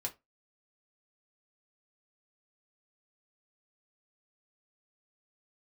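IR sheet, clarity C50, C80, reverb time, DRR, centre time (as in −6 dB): 18.5 dB, 27.5 dB, 0.20 s, 0.5 dB, 9 ms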